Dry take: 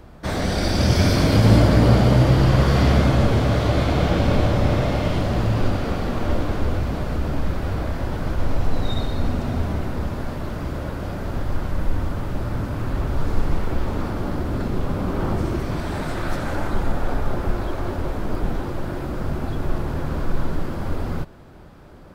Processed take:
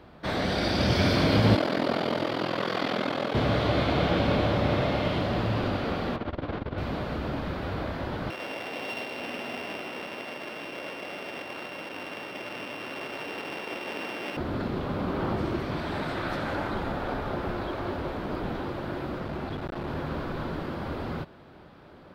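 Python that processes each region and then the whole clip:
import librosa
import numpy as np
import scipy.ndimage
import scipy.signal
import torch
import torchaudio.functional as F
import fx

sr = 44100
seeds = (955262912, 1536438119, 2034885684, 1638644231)

y = fx.chain(x, sr, fx.bessel_highpass(hz=270.0, order=4),
    fx.ring_mod(carrier_hz=21.0), at=(1.55, 3.35))
y = fx.chain(y, sr, fx.clip_hard(threshold_db=-11.0),
    fx.air_absorb(metres=170.0),
    fx.transformer_sat(knee_hz=50.0), at=(6.16, 6.78))
y = fx.chain(y, sr, fx.sample_sort(block=16),
    fx.highpass(hz=380.0, slope=12),
    fx.high_shelf(hz=5100.0, db=-5.0), at=(8.3, 14.37))
y = fx.chain(y, sr, fx.self_delay(depth_ms=0.11),
    fx.clip_hard(threshold_db=-21.0), at=(19.18, 19.9))
y = fx.highpass(y, sr, hz=180.0, slope=6)
y = fx.high_shelf_res(y, sr, hz=5200.0, db=-9.0, q=1.5)
y = y * librosa.db_to_amplitude(-2.5)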